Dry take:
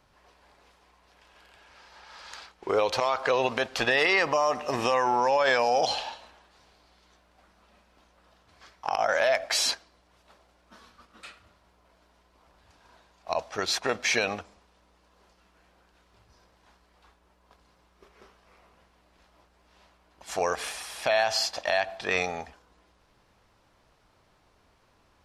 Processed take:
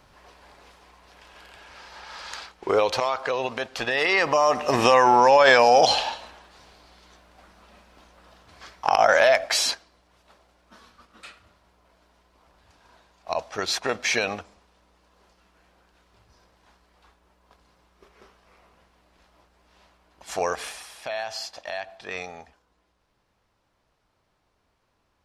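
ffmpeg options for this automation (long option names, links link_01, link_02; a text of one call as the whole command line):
ffmpeg -i in.wav -af "volume=18dB,afade=type=out:start_time=2.09:duration=1.23:silence=0.316228,afade=type=in:start_time=3.89:duration=0.97:silence=0.316228,afade=type=out:start_time=9.05:duration=0.63:silence=0.473151,afade=type=out:start_time=20.46:duration=0.55:silence=0.375837" out.wav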